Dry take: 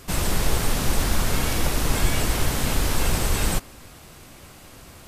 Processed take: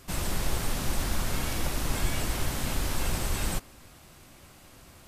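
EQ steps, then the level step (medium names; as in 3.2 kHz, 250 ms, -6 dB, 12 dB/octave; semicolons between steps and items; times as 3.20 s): band-stop 450 Hz, Q 12; -7.0 dB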